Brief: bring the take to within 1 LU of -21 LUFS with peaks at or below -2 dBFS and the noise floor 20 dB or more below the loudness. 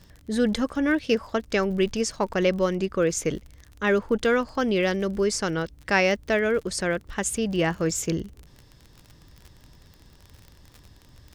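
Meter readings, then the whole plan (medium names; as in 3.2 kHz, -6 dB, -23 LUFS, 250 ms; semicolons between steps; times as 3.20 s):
tick rate 40 per s; loudness -25.0 LUFS; peak level -8.0 dBFS; loudness target -21.0 LUFS
-> de-click; trim +4 dB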